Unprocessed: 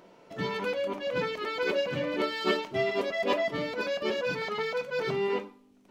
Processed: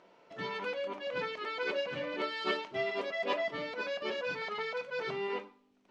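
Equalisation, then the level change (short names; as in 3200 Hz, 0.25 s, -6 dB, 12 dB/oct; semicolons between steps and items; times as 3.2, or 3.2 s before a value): air absorption 95 m; low shelf 390 Hz -11 dB; -2.0 dB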